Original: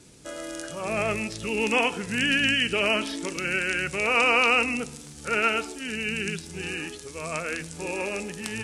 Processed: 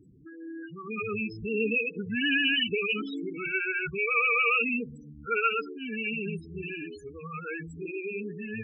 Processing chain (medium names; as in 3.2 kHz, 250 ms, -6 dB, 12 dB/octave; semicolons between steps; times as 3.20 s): loudest bins only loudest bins 8; dynamic bell 4.2 kHz, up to +5 dB, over -46 dBFS, Q 2; brick-wall FIR band-stop 490–1100 Hz